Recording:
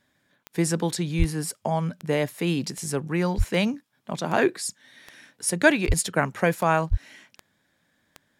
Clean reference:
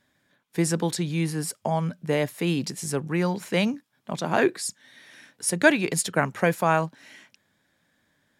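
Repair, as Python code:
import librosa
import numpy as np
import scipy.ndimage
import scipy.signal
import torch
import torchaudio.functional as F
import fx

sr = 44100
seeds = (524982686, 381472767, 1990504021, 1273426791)

y = fx.fix_declick_ar(x, sr, threshold=10.0)
y = fx.fix_deplosive(y, sr, at_s=(1.18, 3.37, 5.87, 6.9))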